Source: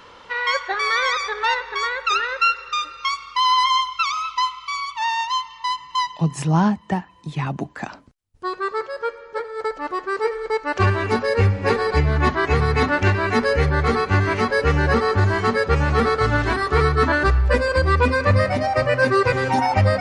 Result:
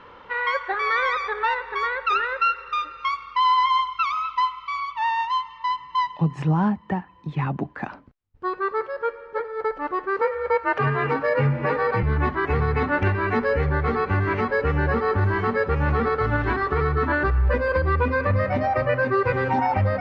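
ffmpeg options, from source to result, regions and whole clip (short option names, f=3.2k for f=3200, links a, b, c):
-filter_complex "[0:a]asettb=1/sr,asplit=3[a][b][c];[a]atrim=end=10.214[d];[b]atrim=start=10.21:end=12.03,asetpts=PTS-STARTPTS,afade=t=in:d=0.004:c=qsin,afade=t=out:st=1.816:d=0.004:c=qsin,equalizer=f=1.3k:w=0.45:g=4.5,afreqshift=41[e];[c]atrim=start=12.026[f];[d][e]acrossfade=d=0.004:c1=hsin:c2=qsin[g];[g][f]acrossfade=d=0.004:c1=qsin:c2=hsin,lowpass=2.2k,bandreject=f=660:w=12,alimiter=limit=-12.5dB:level=0:latency=1:release=190"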